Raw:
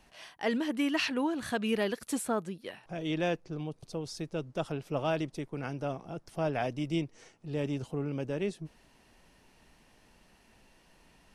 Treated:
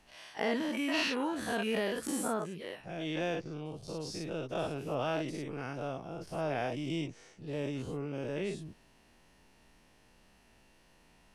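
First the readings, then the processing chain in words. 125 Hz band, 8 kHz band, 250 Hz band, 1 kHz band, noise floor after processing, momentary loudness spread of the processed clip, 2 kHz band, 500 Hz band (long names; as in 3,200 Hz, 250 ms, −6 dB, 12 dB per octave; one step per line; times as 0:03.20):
−3.5 dB, 0.0 dB, −3.0 dB, −1.0 dB, −64 dBFS, 10 LU, 0.0 dB, −1.5 dB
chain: every bin's largest magnitude spread in time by 120 ms
level −6.5 dB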